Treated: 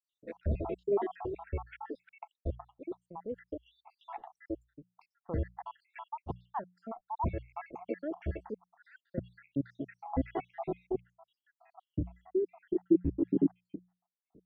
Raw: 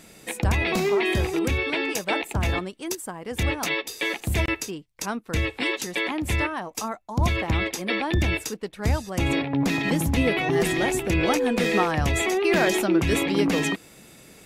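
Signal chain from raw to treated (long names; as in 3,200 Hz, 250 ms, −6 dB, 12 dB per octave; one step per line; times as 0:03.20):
time-frequency cells dropped at random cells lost 80%
mains-hum notches 60/120/180 Hz
low-pass filter sweep 860 Hz → 320 Hz, 0:10.39–0:11.64
level −7 dB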